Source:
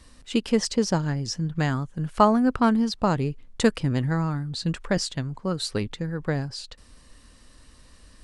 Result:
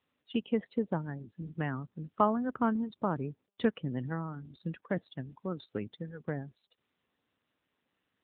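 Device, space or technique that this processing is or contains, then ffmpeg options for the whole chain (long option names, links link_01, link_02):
mobile call with aggressive noise cancelling: -af "highpass=130,afftdn=noise_reduction=27:noise_floor=-35,volume=-8dB" -ar 8000 -c:a libopencore_amrnb -b:a 10200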